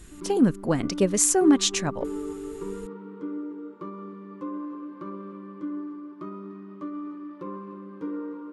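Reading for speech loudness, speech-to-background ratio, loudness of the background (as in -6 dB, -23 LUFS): -22.5 LUFS, 14.0 dB, -36.5 LUFS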